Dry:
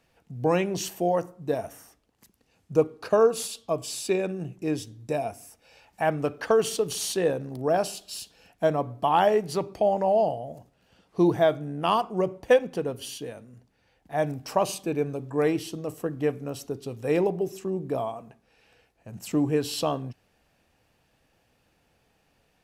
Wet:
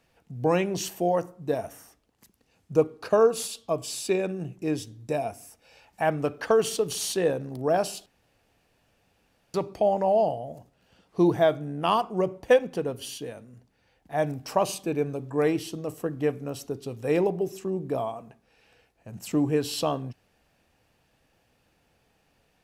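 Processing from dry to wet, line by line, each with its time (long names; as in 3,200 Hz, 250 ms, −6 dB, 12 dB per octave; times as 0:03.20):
0:08.06–0:09.54: fill with room tone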